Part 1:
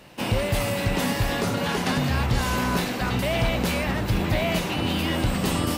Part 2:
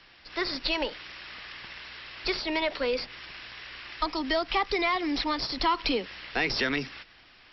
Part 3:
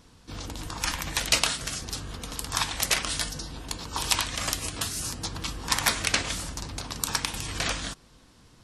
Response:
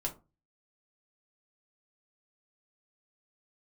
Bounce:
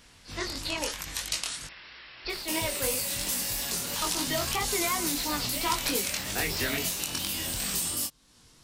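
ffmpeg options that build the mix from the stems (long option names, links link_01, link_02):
-filter_complex "[0:a]bass=frequency=250:gain=-1,treble=frequency=4000:gain=15,adelay=2300,volume=-4dB[link_01];[1:a]volume=-1.5dB[link_02];[2:a]volume=-2dB,asplit=3[link_03][link_04][link_05];[link_03]atrim=end=1.67,asetpts=PTS-STARTPTS,afade=type=out:start_time=1.666:duration=0.004:curve=hsin[link_06];[link_04]atrim=start=1.67:end=3.1,asetpts=PTS-STARTPTS,volume=0[link_07];[link_05]atrim=start=3.1,asetpts=PTS-STARTPTS,afade=type=in:duration=0.004:curve=hsin[link_08];[link_06][link_07][link_08]concat=n=3:v=0:a=1[link_09];[link_01][link_09]amix=inputs=2:normalize=0,highshelf=frequency=2900:gain=11,acompressor=threshold=-33dB:ratio=2,volume=0dB[link_10];[link_02][link_10]amix=inputs=2:normalize=0,flanger=delay=20:depth=3.6:speed=3"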